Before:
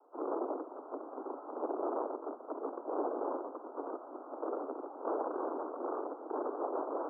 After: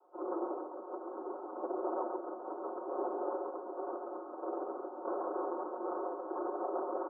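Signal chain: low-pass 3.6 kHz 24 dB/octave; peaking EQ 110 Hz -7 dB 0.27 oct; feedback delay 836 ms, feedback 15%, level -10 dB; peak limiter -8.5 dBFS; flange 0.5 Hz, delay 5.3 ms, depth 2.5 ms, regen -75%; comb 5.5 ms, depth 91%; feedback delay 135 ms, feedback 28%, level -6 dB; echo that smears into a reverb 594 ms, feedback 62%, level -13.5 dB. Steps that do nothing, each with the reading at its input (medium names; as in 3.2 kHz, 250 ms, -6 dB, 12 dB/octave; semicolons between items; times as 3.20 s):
low-pass 3.6 kHz: input has nothing above 1.5 kHz; peaking EQ 110 Hz: input has nothing below 210 Hz; peak limiter -8.5 dBFS: peak at its input -22.5 dBFS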